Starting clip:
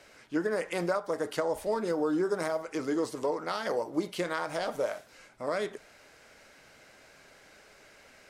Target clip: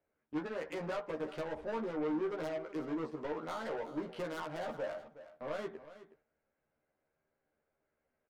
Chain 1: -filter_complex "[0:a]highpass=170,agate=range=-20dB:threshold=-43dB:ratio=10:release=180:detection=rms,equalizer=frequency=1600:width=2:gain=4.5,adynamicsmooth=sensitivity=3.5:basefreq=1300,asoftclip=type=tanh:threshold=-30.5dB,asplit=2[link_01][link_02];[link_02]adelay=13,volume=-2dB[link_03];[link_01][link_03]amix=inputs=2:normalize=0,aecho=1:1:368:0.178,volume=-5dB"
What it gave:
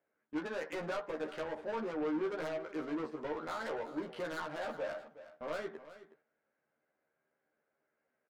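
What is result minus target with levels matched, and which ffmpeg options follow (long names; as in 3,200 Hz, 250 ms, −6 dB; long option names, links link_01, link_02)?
125 Hz band −3.5 dB; 2,000 Hz band +3.0 dB
-filter_complex "[0:a]agate=range=-20dB:threshold=-43dB:ratio=10:release=180:detection=rms,adynamicsmooth=sensitivity=3.5:basefreq=1300,asoftclip=type=tanh:threshold=-30.5dB,asplit=2[link_01][link_02];[link_02]adelay=13,volume=-2dB[link_03];[link_01][link_03]amix=inputs=2:normalize=0,aecho=1:1:368:0.178,volume=-5dB"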